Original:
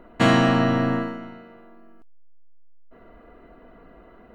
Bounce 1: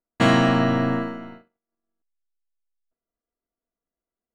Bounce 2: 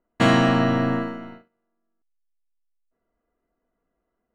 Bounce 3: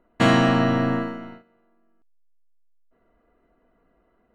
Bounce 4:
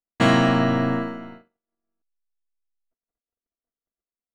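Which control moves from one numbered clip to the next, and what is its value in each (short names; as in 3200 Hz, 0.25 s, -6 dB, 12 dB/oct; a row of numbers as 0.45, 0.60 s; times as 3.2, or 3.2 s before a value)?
gate, range: -44, -29, -16, -56 dB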